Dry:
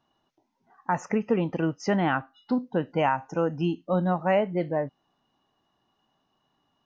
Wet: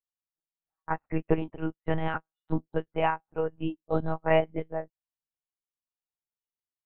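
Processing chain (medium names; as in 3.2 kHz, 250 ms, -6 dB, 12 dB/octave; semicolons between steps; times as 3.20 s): monotone LPC vocoder at 8 kHz 160 Hz; upward expansion 2.5:1, over -45 dBFS; trim +2 dB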